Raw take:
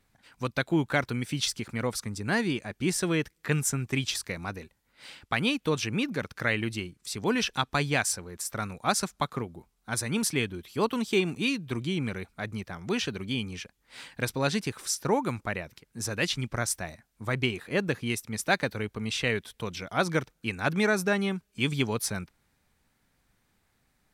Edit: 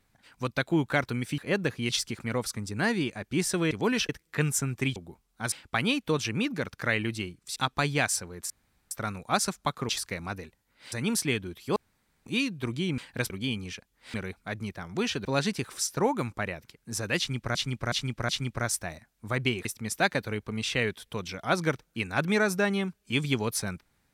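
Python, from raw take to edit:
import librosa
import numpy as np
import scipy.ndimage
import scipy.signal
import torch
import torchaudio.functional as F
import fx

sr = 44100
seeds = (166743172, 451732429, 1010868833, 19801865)

y = fx.edit(x, sr, fx.swap(start_s=4.07, length_s=1.03, other_s=9.44, other_length_s=0.56),
    fx.move(start_s=7.14, length_s=0.38, to_s=3.2),
    fx.insert_room_tone(at_s=8.46, length_s=0.41),
    fx.room_tone_fill(start_s=10.84, length_s=0.5),
    fx.swap(start_s=12.06, length_s=1.11, other_s=14.01, other_length_s=0.32),
    fx.repeat(start_s=16.26, length_s=0.37, count=4),
    fx.move(start_s=17.62, length_s=0.51, to_s=1.38), tone=tone)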